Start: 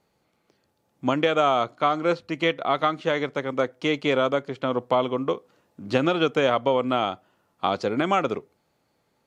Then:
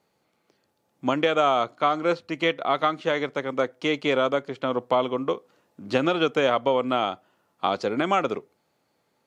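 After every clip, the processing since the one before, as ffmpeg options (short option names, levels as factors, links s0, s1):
-af "highpass=f=160:p=1"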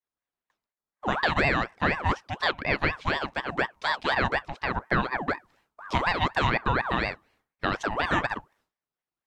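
-af "agate=range=0.0224:threshold=0.00141:ratio=3:detection=peak,aeval=exprs='val(0)*sin(2*PI*920*n/s+920*0.55/4.1*sin(2*PI*4.1*n/s))':c=same"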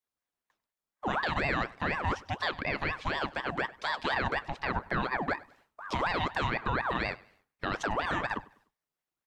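-af "alimiter=limit=0.106:level=0:latency=1:release=21,aecho=1:1:99|198|297:0.0794|0.0286|0.0103"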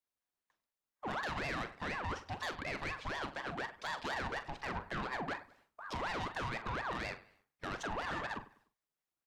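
-filter_complex "[0:a]asoftclip=type=tanh:threshold=0.0355,asplit=2[s0][s1];[s1]adelay=43,volume=0.251[s2];[s0][s2]amix=inputs=2:normalize=0,volume=0.631"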